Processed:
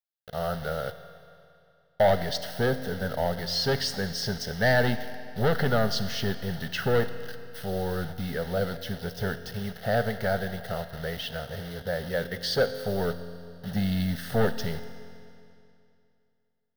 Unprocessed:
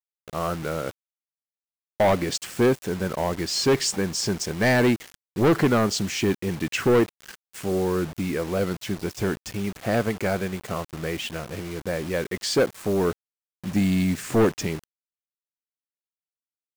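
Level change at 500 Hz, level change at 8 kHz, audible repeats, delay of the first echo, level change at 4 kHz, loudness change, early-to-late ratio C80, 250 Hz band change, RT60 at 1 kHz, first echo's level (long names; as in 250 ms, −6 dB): −3.5 dB, −10.5 dB, no echo audible, no echo audible, −1.5 dB, −4.0 dB, 12.0 dB, −7.5 dB, 2.6 s, no echo audible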